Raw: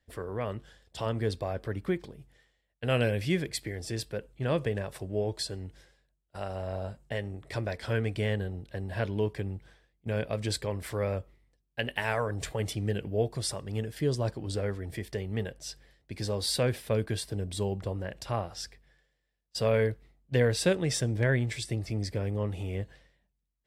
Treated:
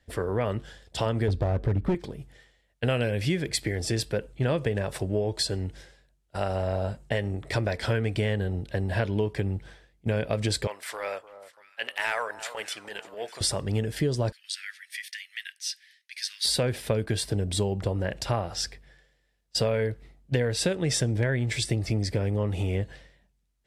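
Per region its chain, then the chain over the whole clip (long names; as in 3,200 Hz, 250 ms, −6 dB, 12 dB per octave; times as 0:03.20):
0:01.28–0:01.95: spectral tilt −3 dB per octave + gain into a clipping stage and back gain 21.5 dB
0:10.67–0:13.41: high-pass filter 890 Hz + transient designer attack −11 dB, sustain −3 dB + delay that swaps between a low-pass and a high-pass 299 ms, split 1,300 Hz, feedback 59%, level −14 dB
0:14.32–0:16.45: Butterworth high-pass 1,700 Hz 48 dB per octave + notch filter 7,500 Hz, Q 7
whole clip: low-pass filter 12,000 Hz 12 dB per octave; notch filter 1,100 Hz, Q 19; downward compressor 10 to 1, threshold −31 dBFS; level +9 dB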